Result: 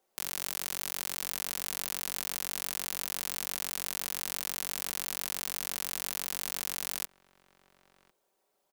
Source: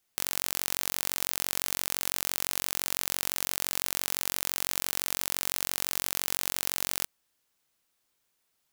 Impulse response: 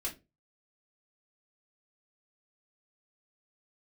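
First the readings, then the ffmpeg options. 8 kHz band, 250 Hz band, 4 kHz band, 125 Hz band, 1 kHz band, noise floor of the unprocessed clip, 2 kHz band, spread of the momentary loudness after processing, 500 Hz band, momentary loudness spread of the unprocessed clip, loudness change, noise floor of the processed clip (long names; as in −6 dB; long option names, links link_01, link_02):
−4.0 dB, −4.0 dB, −4.0 dB, −5.5 dB, −4.0 dB, −76 dBFS, −4.0 dB, 0 LU, −4.5 dB, 0 LU, −4.0 dB, −77 dBFS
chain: -filter_complex "[0:a]aecho=1:1:5.2:0.44,acrossover=split=390|760|2400[link_01][link_02][link_03][link_04];[link_02]acompressor=mode=upward:threshold=-59dB:ratio=2.5[link_05];[link_01][link_05][link_03][link_04]amix=inputs=4:normalize=0,asplit=2[link_06][link_07];[link_07]adelay=1050,volume=-20dB,highshelf=frequency=4000:gain=-23.6[link_08];[link_06][link_08]amix=inputs=2:normalize=0,volume=-5dB"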